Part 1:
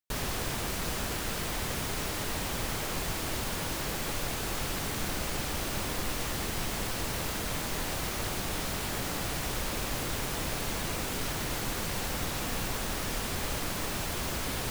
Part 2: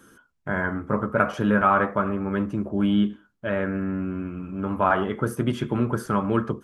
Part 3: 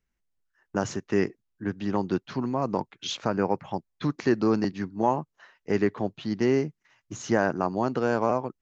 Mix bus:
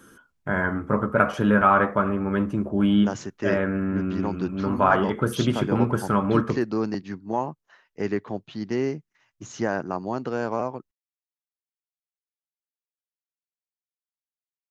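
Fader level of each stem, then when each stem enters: off, +1.5 dB, -2.5 dB; off, 0.00 s, 2.30 s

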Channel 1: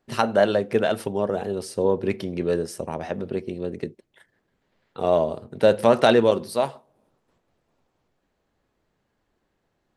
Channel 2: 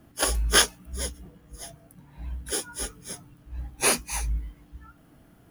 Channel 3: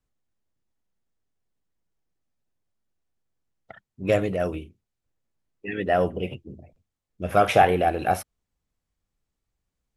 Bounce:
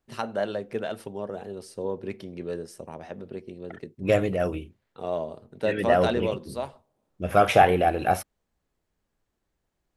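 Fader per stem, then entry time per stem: -9.5 dB, off, 0.0 dB; 0.00 s, off, 0.00 s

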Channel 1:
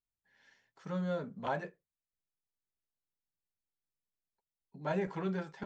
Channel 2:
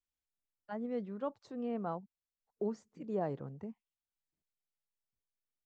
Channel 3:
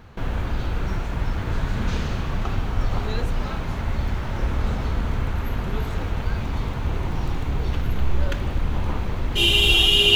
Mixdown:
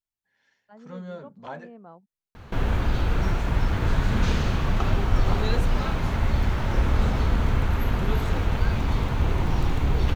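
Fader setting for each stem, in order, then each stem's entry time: -2.5, -8.5, +2.0 dB; 0.00, 0.00, 2.35 s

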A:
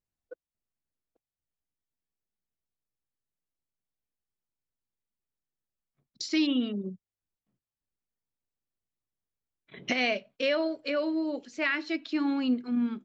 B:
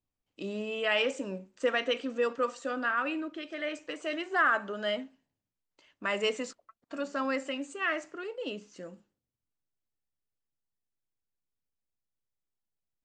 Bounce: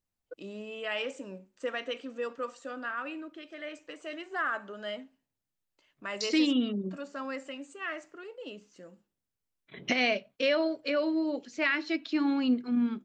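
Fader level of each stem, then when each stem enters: +0.5, -6.0 dB; 0.00, 0.00 s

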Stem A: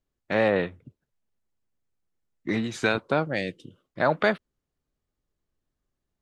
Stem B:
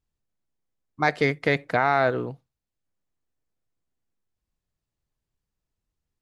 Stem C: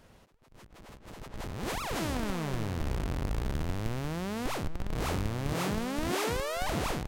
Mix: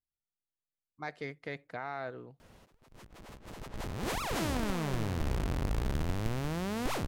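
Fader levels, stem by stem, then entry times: off, -18.0 dB, 0.0 dB; off, 0.00 s, 2.40 s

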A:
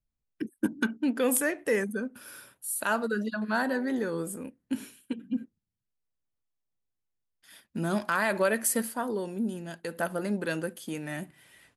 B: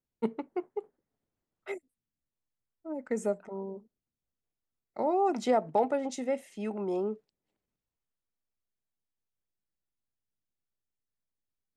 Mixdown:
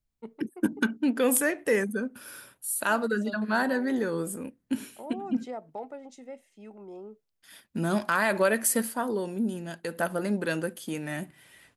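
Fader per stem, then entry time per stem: +2.0, -12.0 dB; 0.00, 0.00 s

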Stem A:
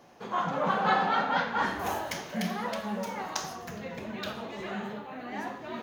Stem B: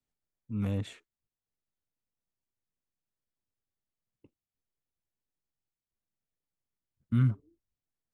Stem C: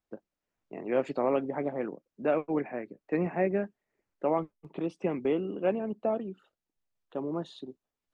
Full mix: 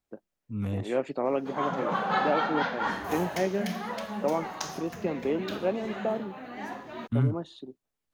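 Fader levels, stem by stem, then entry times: -1.5, 0.0, -0.5 dB; 1.25, 0.00, 0.00 s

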